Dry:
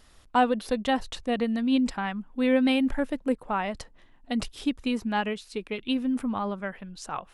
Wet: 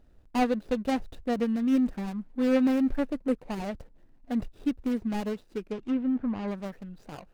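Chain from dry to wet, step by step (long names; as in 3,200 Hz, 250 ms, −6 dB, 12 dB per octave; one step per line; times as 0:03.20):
running median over 41 samples
0:05.65–0:06.48: treble cut that deepens with the level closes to 2,500 Hz, closed at −26 dBFS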